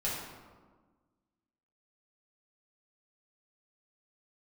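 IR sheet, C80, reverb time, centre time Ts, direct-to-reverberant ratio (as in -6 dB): 3.5 dB, 1.4 s, 73 ms, -8.0 dB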